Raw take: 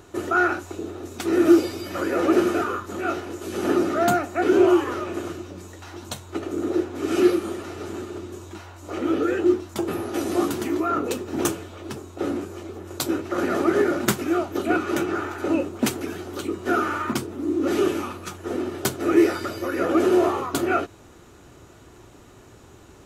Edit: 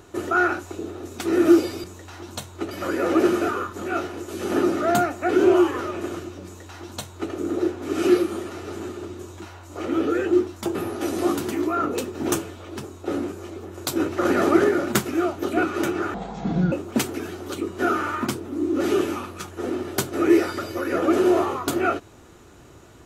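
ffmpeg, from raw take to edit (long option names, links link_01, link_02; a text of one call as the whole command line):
ffmpeg -i in.wav -filter_complex "[0:a]asplit=7[link_01][link_02][link_03][link_04][link_05][link_06][link_07];[link_01]atrim=end=1.842[link_08];[link_02]atrim=start=5.578:end=6.452[link_09];[link_03]atrim=start=1.838:end=13.132[link_10];[link_04]atrim=start=13.128:end=13.772,asetpts=PTS-STARTPTS,volume=3.5dB[link_11];[link_05]atrim=start=13.768:end=15.274[link_12];[link_06]atrim=start=15.27:end=15.59,asetpts=PTS-STARTPTS,asetrate=24255,aresample=44100,atrim=end_sample=25658,asetpts=PTS-STARTPTS[link_13];[link_07]atrim=start=15.586[link_14];[link_08][link_09]acrossfade=duration=0.004:curve1=hsin:curve2=hsin[link_15];[link_15][link_10]acrossfade=duration=0.004:curve1=hsin:curve2=hsin[link_16];[link_16][link_11]acrossfade=duration=0.004:curve1=hsin:curve2=hsin[link_17];[link_17][link_12]acrossfade=duration=0.004:curve1=hsin:curve2=hsin[link_18];[link_18][link_13]acrossfade=duration=0.004:curve1=hsin:curve2=hsin[link_19];[link_19][link_14]acrossfade=duration=0.004:curve1=hsin:curve2=hsin" out.wav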